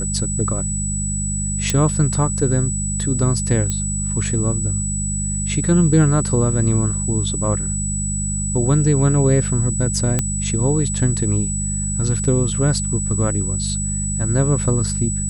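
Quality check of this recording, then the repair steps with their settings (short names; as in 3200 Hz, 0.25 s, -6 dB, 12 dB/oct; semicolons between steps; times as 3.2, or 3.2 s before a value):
hum 50 Hz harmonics 4 -24 dBFS
tone 7900 Hz -24 dBFS
1.7 pop -4 dBFS
3.7 pop -9 dBFS
10.19 pop -5 dBFS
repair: de-click; notch 7900 Hz, Q 30; de-hum 50 Hz, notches 4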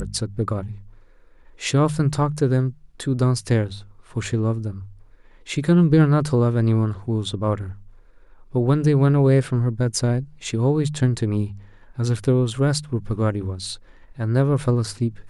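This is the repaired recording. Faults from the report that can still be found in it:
none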